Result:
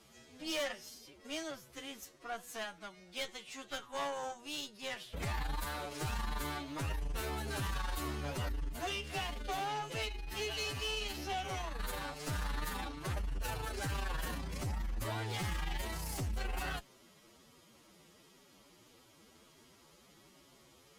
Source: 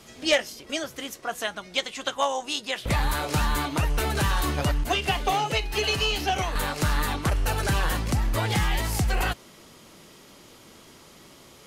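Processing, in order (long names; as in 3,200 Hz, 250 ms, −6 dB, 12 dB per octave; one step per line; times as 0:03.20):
tube saturation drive 25 dB, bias 0.7
phase-vocoder stretch with locked phases 1.8×
level −7.5 dB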